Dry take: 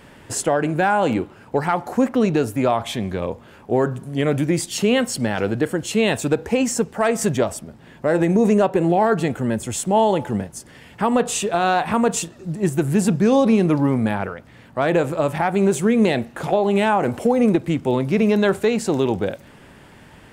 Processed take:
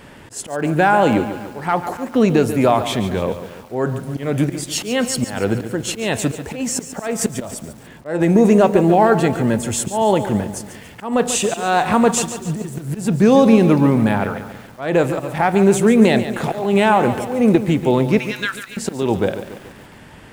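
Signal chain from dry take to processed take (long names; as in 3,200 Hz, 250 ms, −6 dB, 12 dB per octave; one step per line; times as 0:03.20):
volume swells 239 ms
0:18.18–0:18.77: Butterworth high-pass 1,300 Hz 36 dB per octave
feedback echo at a low word length 142 ms, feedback 55%, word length 7 bits, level −11 dB
level +4 dB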